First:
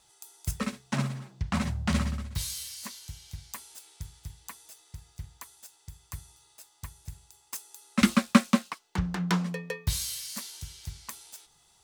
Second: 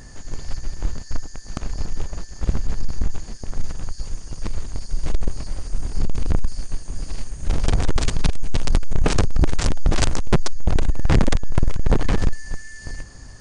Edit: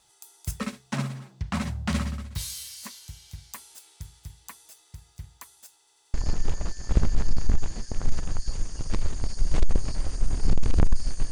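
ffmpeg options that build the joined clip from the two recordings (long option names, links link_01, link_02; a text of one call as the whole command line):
ffmpeg -i cue0.wav -i cue1.wav -filter_complex "[0:a]apad=whole_dur=11.31,atrim=end=11.31,asplit=4[link_01][link_02][link_03][link_04];[link_01]atrim=end=5.872[link_05];[link_02]atrim=start=5.778:end=5.872[link_06];[link_03]atrim=start=5.778:end=5.872[link_07];[link_04]atrim=start=5.778:end=5.872[link_08];[1:a]atrim=start=1.658:end=6.83[link_09];[link_05][link_06]acrossfade=duration=0.004:curve1=hsin:curve2=hsin[link_10];[link_10][link_07]acrossfade=duration=0.004:curve1=hsin:curve2=hsin[link_11];[link_11][link_08]acrossfade=duration=0.004:curve1=hsin:curve2=hsin[link_12];[link_12][link_09]acrossfade=duration=0.004:curve1=hsin:curve2=hsin" out.wav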